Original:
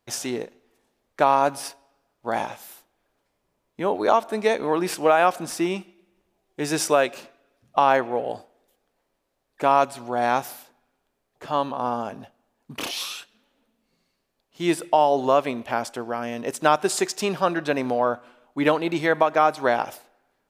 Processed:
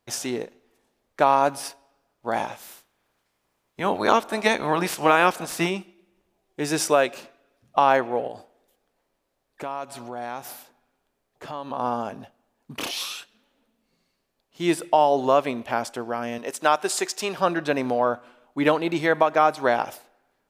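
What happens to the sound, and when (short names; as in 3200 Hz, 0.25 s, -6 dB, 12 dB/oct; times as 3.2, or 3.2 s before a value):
2.58–5.69 spectral limiter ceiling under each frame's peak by 13 dB
8.27–11.71 compressor 2.5:1, threshold -33 dBFS
16.38–17.38 HPF 470 Hz 6 dB/oct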